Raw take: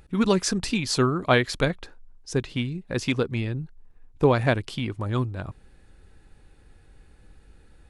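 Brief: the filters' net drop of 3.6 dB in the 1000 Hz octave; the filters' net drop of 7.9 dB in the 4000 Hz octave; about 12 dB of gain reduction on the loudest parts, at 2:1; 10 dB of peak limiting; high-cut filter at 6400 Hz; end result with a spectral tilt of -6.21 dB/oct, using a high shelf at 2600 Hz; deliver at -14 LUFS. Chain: LPF 6400 Hz; bell 1000 Hz -3.5 dB; high shelf 2600 Hz -6.5 dB; bell 4000 Hz -3.5 dB; compressor 2:1, threshold -39 dBFS; gain +27 dB; limiter -3 dBFS

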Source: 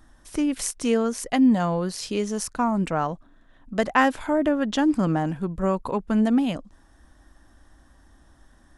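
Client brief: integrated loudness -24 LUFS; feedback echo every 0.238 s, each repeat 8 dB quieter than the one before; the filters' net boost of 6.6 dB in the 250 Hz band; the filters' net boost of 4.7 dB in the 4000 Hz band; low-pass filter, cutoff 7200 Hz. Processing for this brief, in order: LPF 7200 Hz; bell 250 Hz +7.5 dB; bell 4000 Hz +7 dB; feedback echo 0.238 s, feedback 40%, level -8 dB; gain -6 dB

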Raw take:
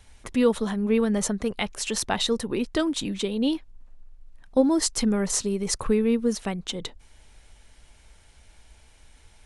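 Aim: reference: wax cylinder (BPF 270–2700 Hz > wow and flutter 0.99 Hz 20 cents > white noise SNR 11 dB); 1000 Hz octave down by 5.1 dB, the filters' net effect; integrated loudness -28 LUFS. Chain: BPF 270–2700 Hz; bell 1000 Hz -6.5 dB; wow and flutter 0.99 Hz 20 cents; white noise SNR 11 dB; gain +2.5 dB

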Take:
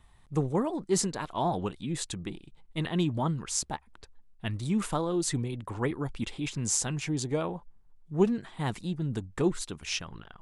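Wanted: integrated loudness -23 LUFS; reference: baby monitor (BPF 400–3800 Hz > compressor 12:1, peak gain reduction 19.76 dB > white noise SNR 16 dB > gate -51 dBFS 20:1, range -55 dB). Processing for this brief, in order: BPF 400–3800 Hz; compressor 12:1, threshold -42 dBFS; white noise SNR 16 dB; gate -51 dBFS 20:1, range -55 dB; gain +24 dB

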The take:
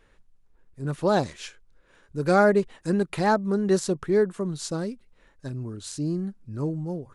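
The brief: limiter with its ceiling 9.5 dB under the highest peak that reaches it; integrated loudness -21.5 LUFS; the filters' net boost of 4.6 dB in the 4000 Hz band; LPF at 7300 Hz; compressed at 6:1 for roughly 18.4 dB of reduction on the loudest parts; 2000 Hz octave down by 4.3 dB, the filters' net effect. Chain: LPF 7300 Hz; bell 2000 Hz -8 dB; bell 4000 Hz +7.5 dB; compressor 6:1, threshold -37 dBFS; gain +21 dB; limiter -12 dBFS

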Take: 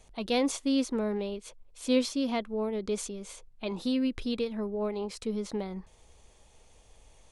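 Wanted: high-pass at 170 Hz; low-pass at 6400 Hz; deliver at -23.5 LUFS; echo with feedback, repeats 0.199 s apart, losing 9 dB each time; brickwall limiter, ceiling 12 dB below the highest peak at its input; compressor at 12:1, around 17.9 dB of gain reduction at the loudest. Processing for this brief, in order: HPF 170 Hz; LPF 6400 Hz; compressor 12:1, threshold -39 dBFS; limiter -38 dBFS; feedback echo 0.199 s, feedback 35%, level -9 dB; gain +22.5 dB

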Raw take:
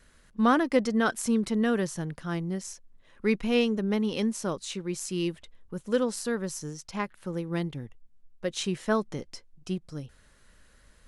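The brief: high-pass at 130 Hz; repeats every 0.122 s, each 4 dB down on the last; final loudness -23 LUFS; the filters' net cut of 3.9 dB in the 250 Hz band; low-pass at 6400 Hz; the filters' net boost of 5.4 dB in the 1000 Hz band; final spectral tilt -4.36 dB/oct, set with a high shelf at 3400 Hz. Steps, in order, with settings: HPF 130 Hz; LPF 6400 Hz; bell 250 Hz -4.5 dB; bell 1000 Hz +8 dB; high shelf 3400 Hz -8 dB; feedback echo 0.122 s, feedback 63%, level -4 dB; gain +5 dB

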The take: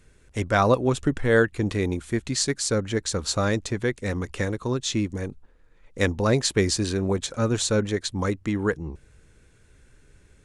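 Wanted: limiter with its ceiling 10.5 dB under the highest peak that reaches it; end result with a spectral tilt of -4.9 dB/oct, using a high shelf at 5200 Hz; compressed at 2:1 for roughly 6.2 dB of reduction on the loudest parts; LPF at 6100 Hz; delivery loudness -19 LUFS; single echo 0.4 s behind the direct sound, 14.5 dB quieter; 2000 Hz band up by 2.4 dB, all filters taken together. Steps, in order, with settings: LPF 6100 Hz; bell 2000 Hz +3.5 dB; high shelf 5200 Hz -3.5 dB; compressor 2:1, threshold -25 dBFS; limiter -21.5 dBFS; echo 0.4 s -14.5 dB; gain +12.5 dB

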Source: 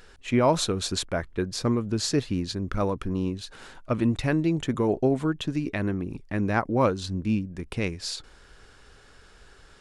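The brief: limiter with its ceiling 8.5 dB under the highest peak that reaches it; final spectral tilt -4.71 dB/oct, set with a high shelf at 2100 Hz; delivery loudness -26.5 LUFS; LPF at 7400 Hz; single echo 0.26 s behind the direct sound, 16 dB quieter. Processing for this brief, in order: LPF 7400 Hz; high shelf 2100 Hz +7 dB; limiter -16.5 dBFS; echo 0.26 s -16 dB; gain +1.5 dB

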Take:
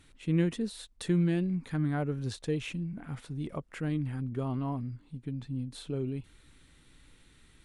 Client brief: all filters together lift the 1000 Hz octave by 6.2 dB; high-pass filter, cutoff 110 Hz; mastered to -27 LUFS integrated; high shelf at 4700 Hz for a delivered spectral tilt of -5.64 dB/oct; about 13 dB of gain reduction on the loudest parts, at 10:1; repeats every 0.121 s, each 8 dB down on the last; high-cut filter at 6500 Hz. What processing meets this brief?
HPF 110 Hz; LPF 6500 Hz; bell 1000 Hz +8 dB; high shelf 4700 Hz +4 dB; compressor 10:1, threshold -36 dBFS; feedback echo 0.121 s, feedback 40%, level -8 dB; gain +14 dB

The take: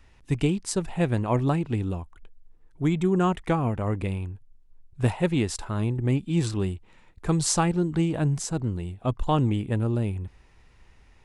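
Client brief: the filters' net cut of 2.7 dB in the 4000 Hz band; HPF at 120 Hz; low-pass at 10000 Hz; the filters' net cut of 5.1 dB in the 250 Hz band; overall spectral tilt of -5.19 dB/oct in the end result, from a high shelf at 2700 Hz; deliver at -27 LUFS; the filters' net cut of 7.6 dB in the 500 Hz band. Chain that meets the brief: HPF 120 Hz; LPF 10000 Hz; bell 250 Hz -4.5 dB; bell 500 Hz -9 dB; high shelf 2700 Hz +3.5 dB; bell 4000 Hz -7 dB; gain +3.5 dB

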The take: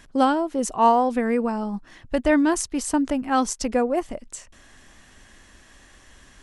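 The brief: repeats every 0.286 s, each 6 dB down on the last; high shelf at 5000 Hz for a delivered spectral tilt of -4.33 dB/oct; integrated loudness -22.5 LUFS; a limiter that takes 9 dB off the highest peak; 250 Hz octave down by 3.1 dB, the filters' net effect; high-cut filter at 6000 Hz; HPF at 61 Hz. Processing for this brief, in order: HPF 61 Hz; LPF 6000 Hz; bell 250 Hz -3.5 dB; high shelf 5000 Hz -4 dB; limiter -16 dBFS; feedback echo 0.286 s, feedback 50%, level -6 dB; gain +3 dB

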